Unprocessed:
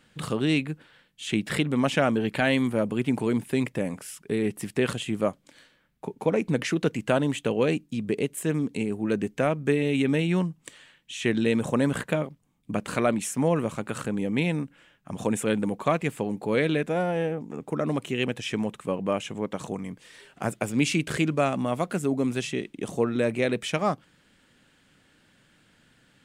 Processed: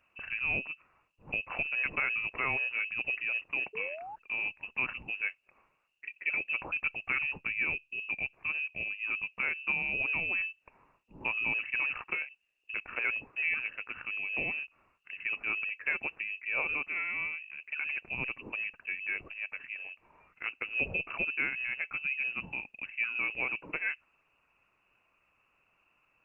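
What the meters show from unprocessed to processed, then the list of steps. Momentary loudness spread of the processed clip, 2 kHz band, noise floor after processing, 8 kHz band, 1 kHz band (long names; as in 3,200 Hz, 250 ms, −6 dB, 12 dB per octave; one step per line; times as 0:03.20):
9 LU, +3.5 dB, −74 dBFS, below −40 dB, −11.5 dB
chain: voice inversion scrambler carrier 2,800 Hz
sound drawn into the spectrogram rise, 0:03.73–0:04.16, 420–900 Hz −34 dBFS
level −8.5 dB
Opus 20 kbit/s 48,000 Hz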